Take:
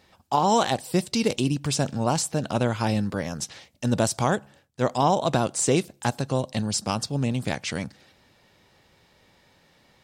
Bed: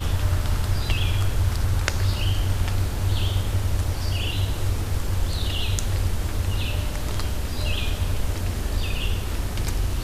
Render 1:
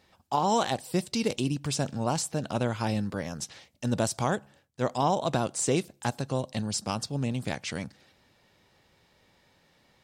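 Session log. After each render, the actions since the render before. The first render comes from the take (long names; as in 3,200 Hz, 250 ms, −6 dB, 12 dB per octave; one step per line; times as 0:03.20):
level −4.5 dB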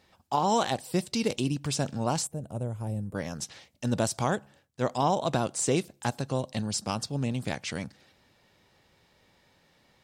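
0:02.27–0:03.15: drawn EQ curve 110 Hz 0 dB, 270 Hz −9 dB, 530 Hz −6 dB, 1,500 Hz −20 dB, 3,300 Hz −22 dB, 4,800 Hz −26 dB, 8,600 Hz −3 dB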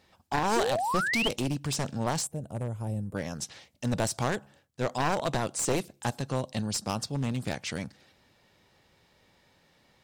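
wavefolder on the positive side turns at −25 dBFS
0:00.56–0:01.29: sound drawn into the spectrogram rise 340–3,300 Hz −29 dBFS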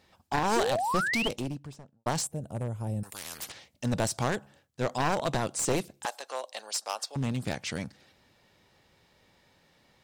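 0:01.04–0:02.06: fade out and dull
0:03.03–0:03.52: every bin compressed towards the loudest bin 10 to 1
0:06.05–0:07.16: high-pass filter 540 Hz 24 dB per octave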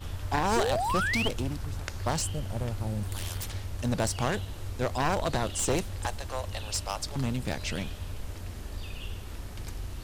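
mix in bed −13 dB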